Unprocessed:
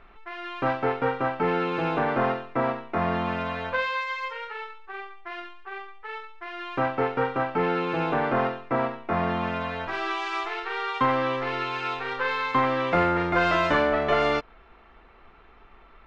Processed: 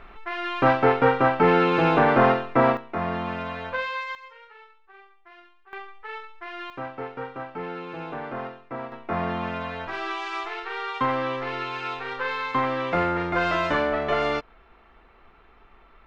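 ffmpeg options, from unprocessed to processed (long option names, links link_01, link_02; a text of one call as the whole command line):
ffmpeg -i in.wav -af "asetnsamples=nb_out_samples=441:pad=0,asendcmd='2.77 volume volume -2dB;4.15 volume volume -13dB;5.73 volume volume 0dB;6.7 volume volume -9dB;8.92 volume volume -1.5dB',volume=6.5dB" out.wav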